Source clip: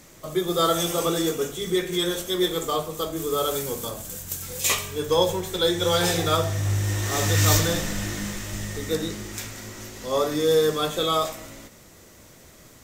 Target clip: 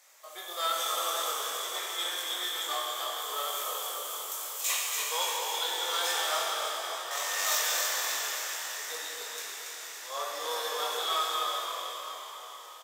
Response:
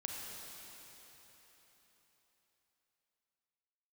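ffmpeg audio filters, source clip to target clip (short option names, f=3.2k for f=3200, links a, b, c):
-filter_complex "[0:a]asettb=1/sr,asplit=3[a][b][c];[a]atrim=end=6.314[d];[b]atrim=start=6.31:end=7.11,asetpts=PTS-STARTPTS,afade=t=in:d=0.004:c=qsin,afade=t=out:st=0.796:d=0.004:c=qsin,lowpass=1.3k[e];[c]atrim=start=7.106[f];[d][e]acrossfade=d=0.004:c1=hsin:c2=qsin[g];[g][f]acrossfade=d=0.004:c1=qsin:c2=hsin,asplit=8[h][i][j][k][l][m][n][o];[i]adelay=282,afreqshift=-59,volume=-5.5dB[p];[j]adelay=564,afreqshift=-118,volume=-10.7dB[q];[k]adelay=846,afreqshift=-177,volume=-15.9dB[r];[l]adelay=1128,afreqshift=-236,volume=-21.1dB[s];[m]adelay=1410,afreqshift=-295,volume=-26.3dB[t];[n]adelay=1692,afreqshift=-354,volume=-31.5dB[u];[o]adelay=1974,afreqshift=-413,volume=-36.7dB[v];[h][p][q][r][s][t][u][v]amix=inputs=8:normalize=0,aeval=exprs='(tanh(3.55*val(0)+0.5)-tanh(0.5))/3.55':c=same,highpass=f=690:w=0.5412,highpass=f=690:w=1.3066,asplit=2[w][x];[x]adelay=23,volume=-4dB[y];[w][y]amix=inputs=2:normalize=0[z];[1:a]atrim=start_sample=2205[aa];[z][aa]afir=irnorm=-1:irlink=0,volume=-3.5dB"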